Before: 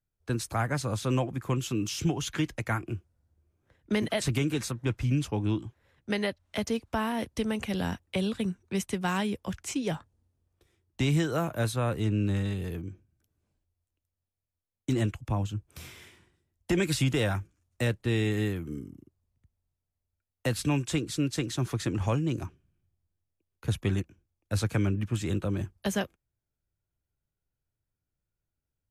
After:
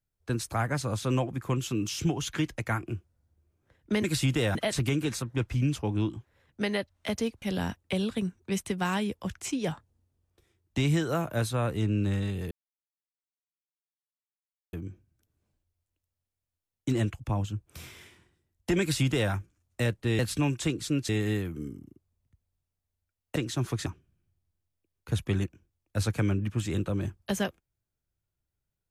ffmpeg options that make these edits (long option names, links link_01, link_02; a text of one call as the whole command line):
ffmpeg -i in.wav -filter_complex "[0:a]asplit=9[link_01][link_02][link_03][link_04][link_05][link_06][link_07][link_08][link_09];[link_01]atrim=end=4.042[link_10];[link_02]atrim=start=16.818:end=17.332[link_11];[link_03]atrim=start=4.038:end=6.912[link_12];[link_04]atrim=start=7.648:end=12.74,asetpts=PTS-STARTPTS,afade=type=out:start_time=5.088:duration=0.004:curve=hsin,apad=pad_dur=2.22[link_13];[link_05]atrim=start=12.74:end=18.202,asetpts=PTS-STARTPTS,afade=type=in:duration=0.004:curve=hsin[link_14];[link_06]atrim=start=20.468:end=21.372[link_15];[link_07]atrim=start=18.198:end=20.472[link_16];[link_08]atrim=start=21.368:end=21.872[link_17];[link_09]atrim=start=22.418[link_18];[link_10][link_11]acrossfade=duration=0.004:curve1=hsin:curve2=hsin[link_19];[link_19][link_12]acrossfade=duration=0.004:curve1=hsin:curve2=hsin[link_20];[link_13][link_14]concat=n=2:v=0:a=1[link_21];[link_20][link_21]acrossfade=duration=0.004:curve1=hsin:curve2=hsin[link_22];[link_22][link_15]acrossfade=duration=0.004:curve1=hsin:curve2=hsin[link_23];[link_23][link_16]acrossfade=duration=0.004:curve1=hsin:curve2=hsin[link_24];[link_24][link_17]acrossfade=duration=0.004:curve1=hsin:curve2=hsin[link_25];[link_25][link_18]acrossfade=duration=0.004:curve1=hsin:curve2=hsin" out.wav